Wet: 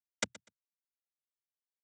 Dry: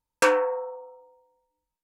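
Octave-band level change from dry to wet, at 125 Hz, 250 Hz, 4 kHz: n/a, -15.0 dB, -6.0 dB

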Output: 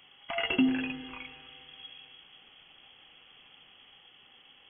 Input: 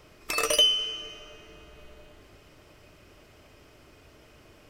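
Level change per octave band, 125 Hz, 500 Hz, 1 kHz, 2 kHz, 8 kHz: +2.0 dB, -6.5 dB, -4.0 dB, -0.5 dB, under -40 dB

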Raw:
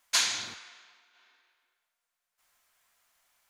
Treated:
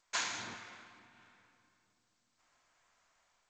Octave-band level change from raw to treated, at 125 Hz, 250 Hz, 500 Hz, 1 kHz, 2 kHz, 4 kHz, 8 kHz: 0.0, +1.0, -1.5, -2.5, -5.5, -12.0, -11.0 dB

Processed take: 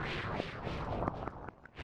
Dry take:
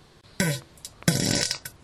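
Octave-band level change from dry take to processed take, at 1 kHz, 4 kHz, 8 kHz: +1.0 dB, -19.0 dB, under -35 dB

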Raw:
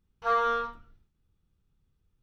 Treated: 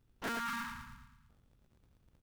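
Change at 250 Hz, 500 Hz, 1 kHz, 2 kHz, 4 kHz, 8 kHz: +5.5 dB, -17.5 dB, -13.0 dB, -4.0 dB, -2.0 dB, n/a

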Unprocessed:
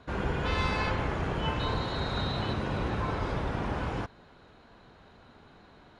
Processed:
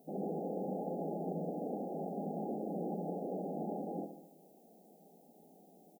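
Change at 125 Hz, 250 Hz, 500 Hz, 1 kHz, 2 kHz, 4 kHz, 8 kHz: -14.0 dB, -4.0 dB, -3.5 dB, -10.0 dB, under -40 dB, under -40 dB, n/a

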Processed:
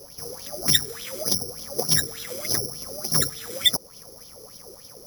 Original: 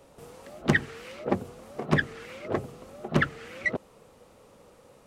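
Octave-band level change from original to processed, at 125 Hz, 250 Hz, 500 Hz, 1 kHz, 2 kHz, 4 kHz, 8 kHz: -3.0, -5.5, -1.0, -4.0, -5.5, +19.5, +26.0 dB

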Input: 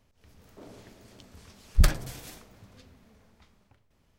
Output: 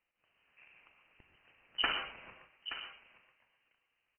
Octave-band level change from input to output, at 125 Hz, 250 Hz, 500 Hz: -35.0, -16.0, -8.5 dB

